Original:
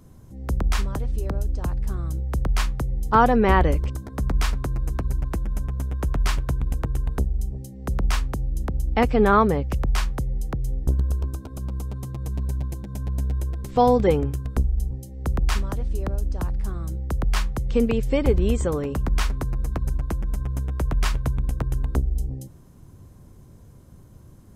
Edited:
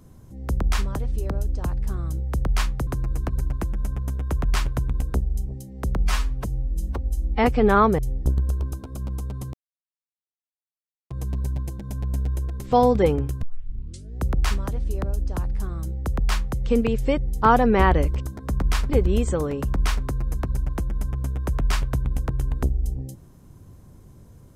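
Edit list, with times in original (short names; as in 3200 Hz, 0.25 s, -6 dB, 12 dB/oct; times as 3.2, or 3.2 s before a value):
2.87–4.59 move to 18.22
6.82–7.14 cut
8.06–9.01 stretch 1.5×
9.55–10.6 cut
12.15 insert silence 1.57 s
14.47 tape start 0.78 s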